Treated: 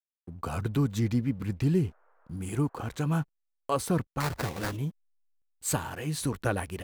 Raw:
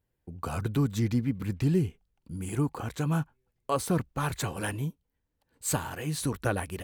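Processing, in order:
slack as between gear wheels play −48.5 dBFS
0:01.76–0:03.07: noise in a band 430–1,500 Hz −68 dBFS
0:04.20–0:04.77: sample-rate reduction 3,100 Hz, jitter 20%

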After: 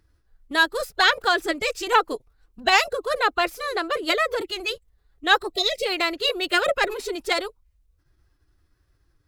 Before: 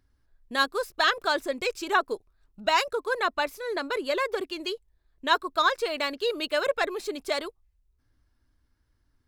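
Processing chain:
phase-vocoder pitch shift with formants kept +3 semitones
gain on a spectral selection 0:05.53–0:05.86, 720–1,900 Hz −27 dB
level +5.5 dB

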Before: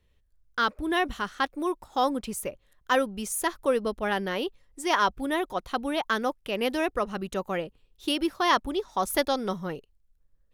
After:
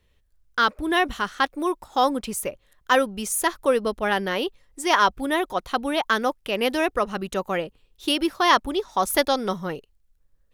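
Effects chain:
low-shelf EQ 410 Hz −3.5 dB
level +5.5 dB

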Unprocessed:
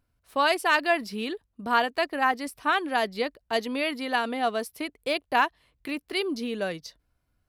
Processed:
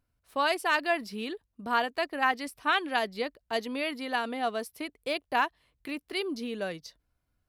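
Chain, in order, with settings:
0:02.22–0:02.99: dynamic equaliser 3,000 Hz, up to +6 dB, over −38 dBFS, Q 0.77
level −4 dB

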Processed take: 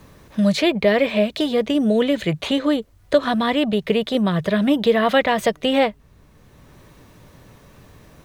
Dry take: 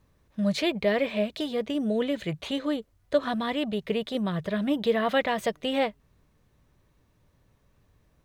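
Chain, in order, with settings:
multiband upward and downward compressor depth 40%
level +8.5 dB

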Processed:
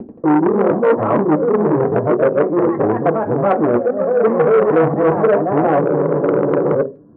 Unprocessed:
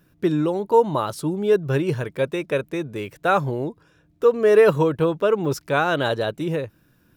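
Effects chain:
reversed piece by piece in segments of 235 ms
Bessel low-pass filter 610 Hz, order 8
noise gate with hold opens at −53 dBFS
low-shelf EQ 210 Hz −4 dB
reversed playback
downward compressor 16 to 1, threshold −26 dBFS, peak gain reduction 15 dB
reversed playback
delay with pitch and tempo change per echo 87 ms, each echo +2 semitones, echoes 3, each echo −6 dB
convolution reverb RT60 0.30 s, pre-delay 3 ms, DRR 1.5 dB
boost into a limiter +10 dB
frozen spectrum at 0:05.83, 0.91 s
saturating transformer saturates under 690 Hz
level −1.5 dB

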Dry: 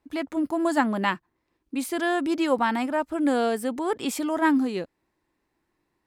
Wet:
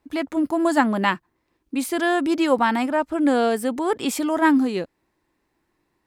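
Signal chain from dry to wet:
0:02.90–0:03.51: high-shelf EQ 9,700 Hz −6.5 dB
level +4 dB

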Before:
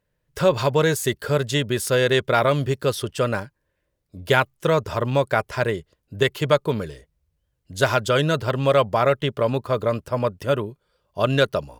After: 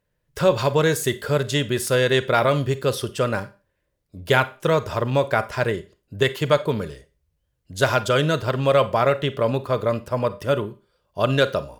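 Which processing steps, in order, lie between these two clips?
four-comb reverb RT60 0.32 s, combs from 31 ms, DRR 14 dB

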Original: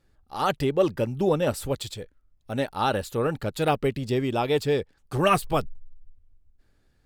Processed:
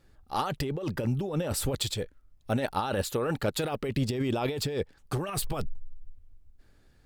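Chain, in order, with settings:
0:03.02–0:03.89: low-shelf EQ 220 Hz −6 dB
compressor whose output falls as the input rises −29 dBFS, ratio −1

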